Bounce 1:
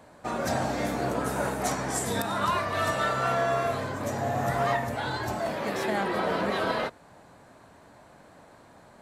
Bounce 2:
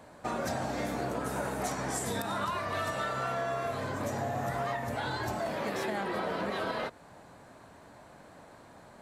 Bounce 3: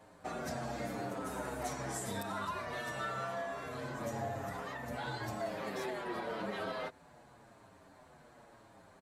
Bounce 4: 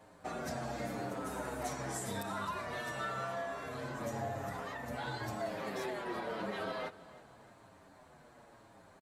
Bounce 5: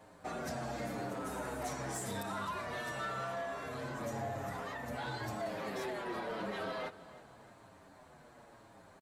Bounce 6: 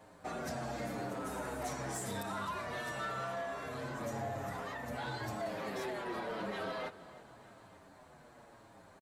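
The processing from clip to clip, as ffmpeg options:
-af "acompressor=threshold=-30dB:ratio=6"
-filter_complex "[0:a]asplit=2[a][b];[b]adelay=7.1,afreqshift=-0.91[c];[a][c]amix=inputs=2:normalize=1,volume=-3dB"
-af "aecho=1:1:314|628|942|1256:0.119|0.0535|0.0241|0.0108"
-af "asoftclip=type=tanh:threshold=-32dB,volume=1dB"
-af "aecho=1:1:889:0.0631"

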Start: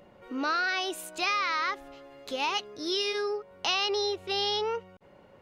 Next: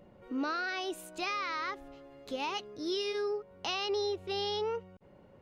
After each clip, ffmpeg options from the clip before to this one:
-af "lowshelf=f=490:g=10,volume=-8dB"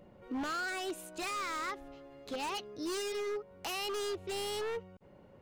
-af "aeval=exprs='0.0266*(abs(mod(val(0)/0.0266+3,4)-2)-1)':c=same"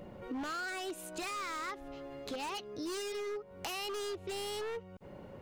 -af "acompressor=threshold=-51dB:ratio=2.5,volume=8.5dB"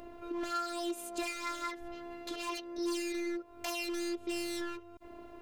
-af "afftfilt=real='hypot(re,im)*cos(PI*b)':imag='0':win_size=512:overlap=0.75,volume=5.5dB"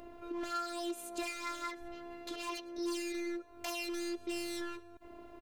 -af "aecho=1:1:112|224|336:0.0668|0.0321|0.0154,volume=-2dB"

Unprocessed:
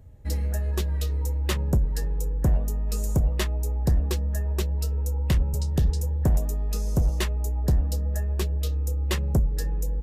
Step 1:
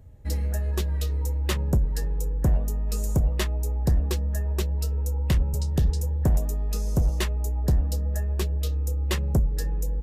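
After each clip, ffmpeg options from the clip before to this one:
-af anull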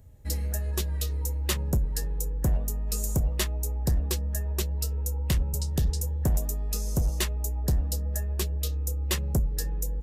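-af "highshelf=f=4.1k:g=10.5,volume=-3.5dB"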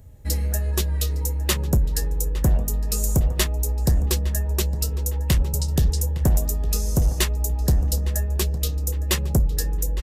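-filter_complex "[0:a]asplit=2[a][b];[b]adelay=860,lowpass=f=3.8k:p=1,volume=-15dB,asplit=2[c][d];[d]adelay=860,lowpass=f=3.8k:p=1,volume=0.47,asplit=2[e][f];[f]adelay=860,lowpass=f=3.8k:p=1,volume=0.47,asplit=2[g][h];[h]adelay=860,lowpass=f=3.8k:p=1,volume=0.47[i];[a][c][e][g][i]amix=inputs=5:normalize=0,volume=6dB"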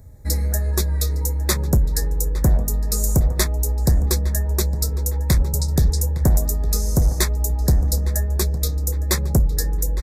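-af "asuperstop=centerf=2900:order=4:qfactor=2.1,volume=2.5dB"

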